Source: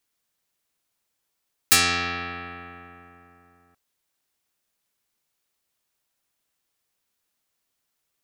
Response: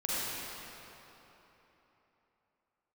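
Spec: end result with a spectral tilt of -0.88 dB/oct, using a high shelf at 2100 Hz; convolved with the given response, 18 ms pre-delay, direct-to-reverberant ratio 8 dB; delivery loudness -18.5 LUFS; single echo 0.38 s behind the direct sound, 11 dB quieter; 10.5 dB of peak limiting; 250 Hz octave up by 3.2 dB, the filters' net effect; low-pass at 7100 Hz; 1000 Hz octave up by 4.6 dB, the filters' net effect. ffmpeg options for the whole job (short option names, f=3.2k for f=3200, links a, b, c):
-filter_complex "[0:a]lowpass=7.1k,equalizer=f=250:t=o:g=3.5,equalizer=f=1k:t=o:g=4,highshelf=f=2.1k:g=8,alimiter=limit=-10dB:level=0:latency=1,aecho=1:1:380:0.282,asplit=2[a][b];[1:a]atrim=start_sample=2205,adelay=18[c];[b][c]afir=irnorm=-1:irlink=0,volume=-16dB[d];[a][d]amix=inputs=2:normalize=0,volume=5dB"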